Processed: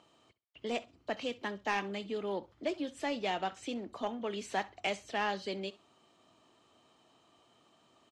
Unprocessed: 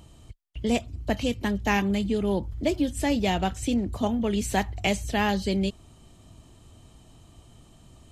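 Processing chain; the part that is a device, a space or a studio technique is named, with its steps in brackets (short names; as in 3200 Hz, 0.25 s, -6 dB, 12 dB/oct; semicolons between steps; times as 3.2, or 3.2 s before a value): intercom (BPF 380–4800 Hz; bell 1200 Hz +4 dB 0.55 oct; soft clip -16 dBFS, distortion -19 dB); feedback echo 65 ms, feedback 19%, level -20 dB; gain -6 dB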